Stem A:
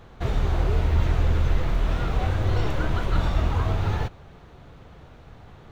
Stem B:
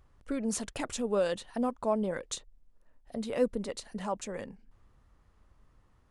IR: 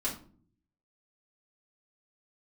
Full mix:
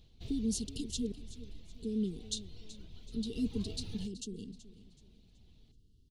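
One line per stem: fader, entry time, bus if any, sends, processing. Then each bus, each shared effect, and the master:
0:03.21 −16 dB → 0:03.55 −7 dB, 0.00 s, send −22.5 dB, no echo send, reverb reduction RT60 0.74 s; high shelf with overshoot 2,200 Hz +7 dB, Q 1.5; automatic ducking −12 dB, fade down 0.90 s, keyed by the second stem
0.0 dB, 0.00 s, muted 0:01.12–0:01.74, no send, echo send −16 dB, brick-wall band-stop 480–2,700 Hz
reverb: on, pre-delay 3 ms
echo: repeating echo 377 ms, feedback 36%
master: drawn EQ curve 250 Hz 0 dB, 1,300 Hz −17 dB, 4,300 Hz +4 dB, 7,300 Hz −4 dB

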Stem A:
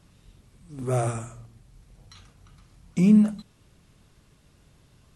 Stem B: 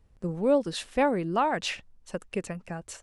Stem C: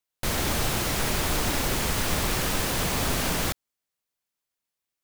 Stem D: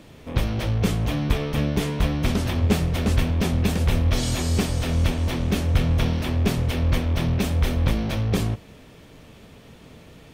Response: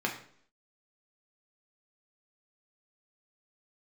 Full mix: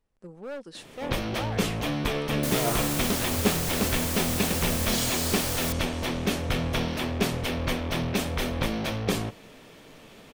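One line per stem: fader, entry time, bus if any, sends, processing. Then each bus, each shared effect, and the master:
−2.5 dB, 1.65 s, no send, compressor whose output falls as the input rises −26 dBFS
−8.5 dB, 0.00 s, no send, gain into a clipping stage and back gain 23.5 dB
−9.5 dB, 2.20 s, no send, high-shelf EQ 4,400 Hz +10.5 dB
+1.0 dB, 0.75 s, no send, no processing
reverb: not used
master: parametric band 62 Hz −14.5 dB 2.6 octaves

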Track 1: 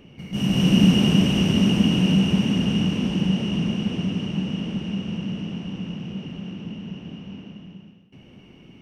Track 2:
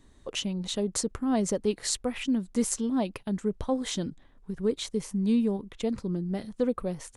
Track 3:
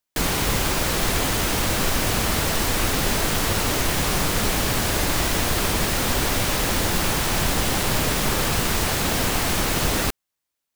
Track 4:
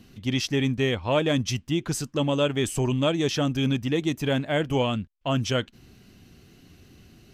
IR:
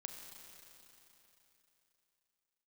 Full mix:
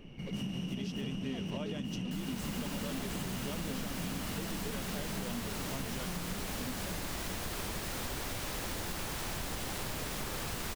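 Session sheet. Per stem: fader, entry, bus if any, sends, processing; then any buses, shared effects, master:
−4.5 dB, 0.00 s, no send, downward compressor, threshold −21 dBFS, peak gain reduction 10 dB
−12.5 dB, 0.00 s, no send, bass and treble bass +13 dB, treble −14 dB; comb filter 7.1 ms; short delay modulated by noise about 2,600 Hz, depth 0.074 ms
−15.0 dB, 1.95 s, no send, automatic gain control
−10.0 dB, 0.45 s, no send, no processing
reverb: not used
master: downward compressor 6 to 1, threshold −35 dBFS, peak gain reduction 13 dB

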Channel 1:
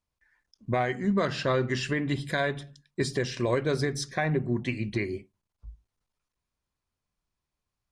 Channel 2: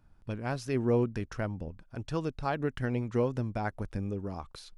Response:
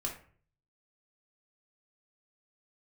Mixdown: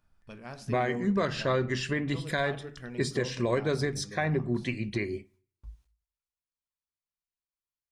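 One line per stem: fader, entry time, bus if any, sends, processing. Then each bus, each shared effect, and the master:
−2.0 dB, 0.00 s, send −21 dB, noise gate with hold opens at −54 dBFS
−15.0 dB, 0.00 s, send −3.5 dB, no processing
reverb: on, RT60 0.50 s, pre-delay 4 ms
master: one half of a high-frequency compander encoder only

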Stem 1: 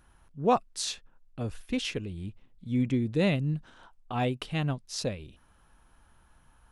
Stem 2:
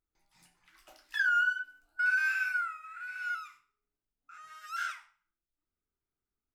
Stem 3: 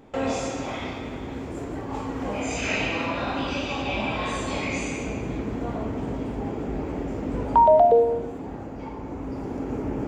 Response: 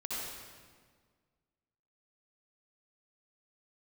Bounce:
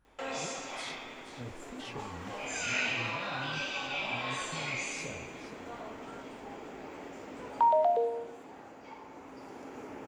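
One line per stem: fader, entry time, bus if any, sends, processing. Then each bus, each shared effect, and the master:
−10.0 dB, 0.00 s, no send, echo send −11 dB, high-shelf EQ 3,800 Hz −7 dB; chorus effect 1.1 Hz, delay 19.5 ms, depth 5.6 ms; compressor whose output falls as the input rises −34 dBFS
−15.5 dB, 1.35 s, no send, no echo send, three sine waves on the formant tracks
−2.5 dB, 0.05 s, no send, no echo send, high-pass filter 1,500 Hz 6 dB per octave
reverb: not used
echo: single-tap delay 478 ms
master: no processing

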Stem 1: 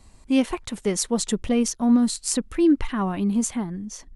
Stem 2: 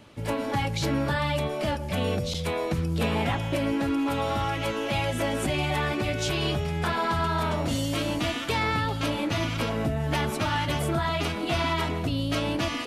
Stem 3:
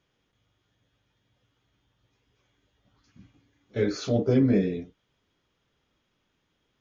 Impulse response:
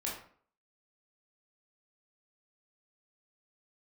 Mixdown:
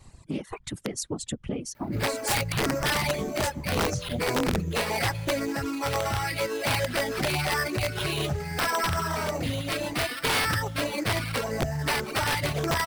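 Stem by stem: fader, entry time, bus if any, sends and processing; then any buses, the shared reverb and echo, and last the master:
+1.0 dB, 0.00 s, no send, downward compressor 20 to 1, threshold −29 dBFS, peak gain reduction 16 dB; random phases in short frames
−1.0 dB, 1.75 s, no send, graphic EQ with 10 bands 125 Hz +6 dB, 250 Hz −4 dB, 500 Hz +5 dB, 2,000 Hz +9 dB, 4,000 Hz −4 dB, 8,000 Hz +6 dB; sample-rate reduction 6,800 Hz, jitter 0%
−5.5 dB, 0.00 s, no send, no processing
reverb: not used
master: reverb reduction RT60 2 s; wrap-around overflow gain 18 dB; highs frequency-modulated by the lows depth 0.23 ms

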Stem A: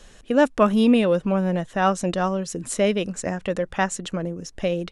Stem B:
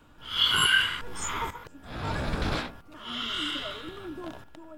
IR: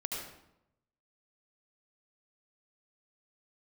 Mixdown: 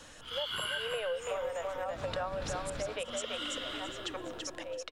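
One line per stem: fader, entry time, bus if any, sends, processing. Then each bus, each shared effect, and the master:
−0.5 dB, 0.00 s, no send, echo send −5.5 dB, Butterworth high-pass 450 Hz 96 dB per octave; treble cut that deepens with the level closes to 830 Hz, closed at −16 dBFS; volume swells 378 ms
−0.5 dB, 0.00 s, send −12 dB, echo send −11 dB, automatic ducking −10 dB, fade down 0.25 s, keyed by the first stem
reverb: on, RT60 0.85 s, pre-delay 67 ms
echo: repeating echo 333 ms, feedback 18%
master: downward compressor 6 to 1, threshold −33 dBFS, peak gain reduction 14 dB

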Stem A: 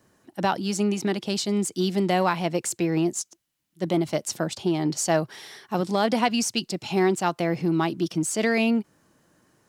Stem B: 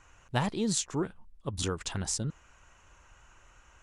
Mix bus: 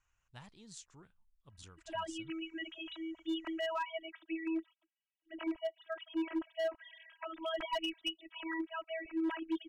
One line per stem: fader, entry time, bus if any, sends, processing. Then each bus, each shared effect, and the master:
−3.0 dB, 1.50 s, no send, three sine waves on the formant tracks; low-shelf EQ 250 Hz −5 dB; phases set to zero 324 Hz
−19.5 dB, 0.00 s, no send, no processing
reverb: not used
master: low-pass filter 9,800 Hz; parametric band 390 Hz −10.5 dB 2.5 octaves; hard clipping −29.5 dBFS, distortion −19 dB

